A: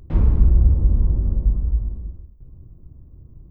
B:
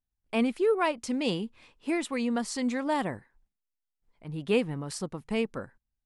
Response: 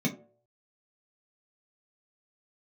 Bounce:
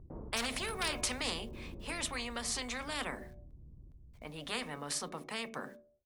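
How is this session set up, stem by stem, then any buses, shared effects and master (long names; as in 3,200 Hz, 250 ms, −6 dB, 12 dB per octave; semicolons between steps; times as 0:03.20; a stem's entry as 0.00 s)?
−20.0 dB, 0.00 s, no send, echo send −5 dB, Bessel low-pass filter 750 Hz, order 4; automatic ducking −16 dB, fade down 0.60 s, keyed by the second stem
0:01.07 −3 dB → 0:01.46 −10.5 dB, 0.00 s, send −13 dB, no echo send, high-pass filter 340 Hz 12 dB per octave; bit-depth reduction 12 bits, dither none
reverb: on, RT60 0.55 s, pre-delay 3 ms
echo: repeating echo 411 ms, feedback 50%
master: hard clipping −17 dBFS, distortion −24 dB; every bin compressed towards the loudest bin 4 to 1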